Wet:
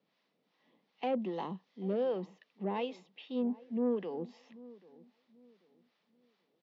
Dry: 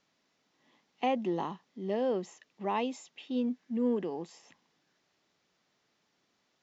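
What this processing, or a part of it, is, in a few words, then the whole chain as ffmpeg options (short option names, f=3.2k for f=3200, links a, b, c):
guitar amplifier with harmonic tremolo: -filter_complex "[0:a]acrossover=split=640[a][b];[a]aeval=exprs='val(0)*(1-0.7/2+0.7/2*cos(2*PI*2.6*n/s))':c=same[c];[b]aeval=exprs='val(0)*(1-0.7/2-0.7/2*cos(2*PI*2.6*n/s))':c=same[d];[c][d]amix=inputs=2:normalize=0,asoftclip=type=tanh:threshold=-28dB,highpass=120,highpass=95,equalizer=f=190:t=q:w=4:g=6,equalizer=f=490:t=q:w=4:g=6,equalizer=f=1.5k:t=q:w=4:g=-4,lowpass=f=4.5k:w=0.5412,lowpass=f=4.5k:w=1.3066,asettb=1/sr,asplit=3[e][f][g];[e]atrim=end=1.334[h];[f]atrim=start=1.33:end=2.04,asetpts=PTS-STARTPTS,afade=t=in:d=0.004:c=qsin,afade=t=out:st=0.706:d=0.004:c=qsin,highshelf=f=4.8k:g=8[i];[g]atrim=start=2.036[j];[h][i]acrossfade=d=0.004:c1=hsin:c2=qsin[k];[k][j]acrossfade=d=0.004:c1=qsin:c2=hsin,asplit=2[l][m];[m]adelay=787,lowpass=f=930:p=1,volume=-19.5dB,asplit=2[n][o];[o]adelay=787,lowpass=f=930:p=1,volume=0.31,asplit=2[p][q];[q]adelay=787,lowpass=f=930:p=1,volume=0.31[r];[l][n][p][r]amix=inputs=4:normalize=0"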